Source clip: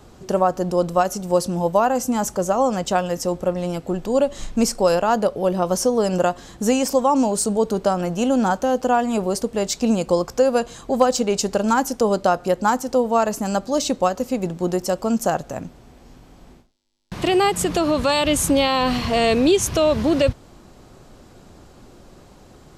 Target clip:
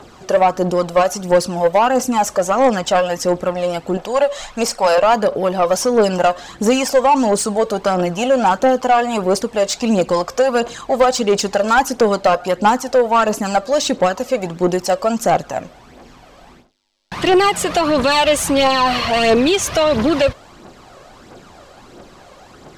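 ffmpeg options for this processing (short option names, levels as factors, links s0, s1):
-filter_complex "[0:a]aphaser=in_gain=1:out_gain=1:delay=1.9:decay=0.51:speed=1.5:type=triangular,asettb=1/sr,asplit=3[s0][s1][s2];[s0]atrim=end=3.974[s3];[s1]atrim=start=3.97:end=4.98,asetpts=PTS-STARTPTS,afade=t=in:d=0.004:c=qsin,afade=t=out:st=1.006:d=0.004:c=qsin,lowshelf=f=450:t=q:w=1.5:g=-8[s4];[s2]atrim=start=4.976[s5];[s3][s4]acrossfade=d=0.004:c1=hsin:c2=qsin[s6];[s6][s5]acrossfade=d=0.004:c1=qsin:c2=hsin,asplit=2[s7][s8];[s8]highpass=f=720:p=1,volume=8.91,asoftclip=type=tanh:threshold=1[s9];[s7][s9]amix=inputs=2:normalize=0,lowpass=f=3200:p=1,volume=0.501,volume=0.708"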